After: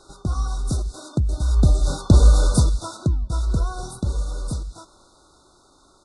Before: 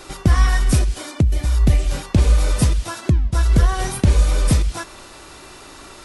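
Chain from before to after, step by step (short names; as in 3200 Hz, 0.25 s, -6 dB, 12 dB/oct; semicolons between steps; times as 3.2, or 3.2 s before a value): Doppler pass-by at 2.16, 9 m/s, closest 4.5 m; downsampling 22050 Hz; FFT band-reject 1500–3500 Hz; gain +2 dB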